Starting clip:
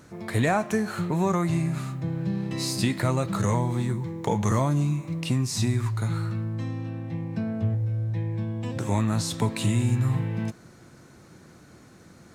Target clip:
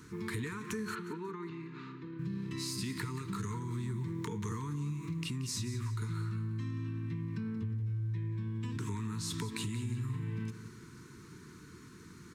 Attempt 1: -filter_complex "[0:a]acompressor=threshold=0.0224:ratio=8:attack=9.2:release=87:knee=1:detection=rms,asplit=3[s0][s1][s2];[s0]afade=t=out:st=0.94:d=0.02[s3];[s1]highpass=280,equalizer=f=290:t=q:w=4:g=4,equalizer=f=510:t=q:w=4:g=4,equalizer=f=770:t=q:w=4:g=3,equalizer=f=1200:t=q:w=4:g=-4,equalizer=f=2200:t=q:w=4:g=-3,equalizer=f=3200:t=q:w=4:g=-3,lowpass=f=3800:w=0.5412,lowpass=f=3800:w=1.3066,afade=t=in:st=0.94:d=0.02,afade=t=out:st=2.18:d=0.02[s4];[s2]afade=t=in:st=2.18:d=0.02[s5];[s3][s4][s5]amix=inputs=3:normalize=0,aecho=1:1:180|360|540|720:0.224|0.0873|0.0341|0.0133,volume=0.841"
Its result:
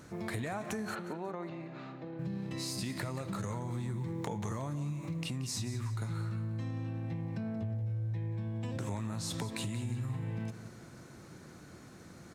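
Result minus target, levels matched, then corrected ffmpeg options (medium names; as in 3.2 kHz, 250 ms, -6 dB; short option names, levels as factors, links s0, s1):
500 Hz band +3.0 dB
-filter_complex "[0:a]acompressor=threshold=0.0224:ratio=8:attack=9.2:release=87:knee=1:detection=rms,asuperstop=centerf=650:order=20:qfactor=1.5,asplit=3[s0][s1][s2];[s0]afade=t=out:st=0.94:d=0.02[s3];[s1]highpass=280,equalizer=f=290:t=q:w=4:g=4,equalizer=f=510:t=q:w=4:g=4,equalizer=f=770:t=q:w=4:g=3,equalizer=f=1200:t=q:w=4:g=-4,equalizer=f=2200:t=q:w=4:g=-3,equalizer=f=3200:t=q:w=4:g=-3,lowpass=f=3800:w=0.5412,lowpass=f=3800:w=1.3066,afade=t=in:st=0.94:d=0.02,afade=t=out:st=2.18:d=0.02[s4];[s2]afade=t=in:st=2.18:d=0.02[s5];[s3][s4][s5]amix=inputs=3:normalize=0,aecho=1:1:180|360|540|720:0.224|0.0873|0.0341|0.0133,volume=0.841"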